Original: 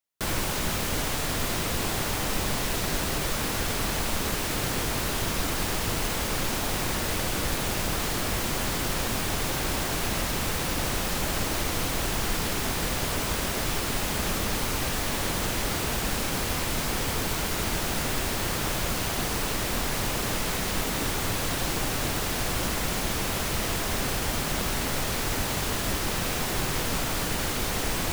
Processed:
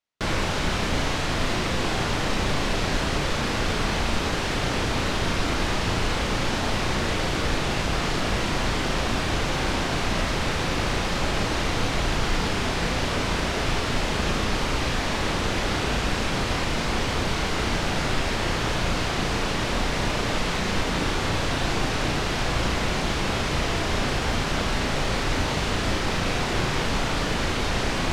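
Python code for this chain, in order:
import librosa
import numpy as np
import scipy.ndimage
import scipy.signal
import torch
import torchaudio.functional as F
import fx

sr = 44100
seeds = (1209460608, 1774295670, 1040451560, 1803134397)

p1 = scipy.signal.sosfilt(scipy.signal.butter(2, 4800.0, 'lowpass', fs=sr, output='sos'), x)
p2 = p1 + fx.room_flutter(p1, sr, wall_m=6.0, rt60_s=0.28, dry=0)
y = p2 * librosa.db_to_amplitude(3.5)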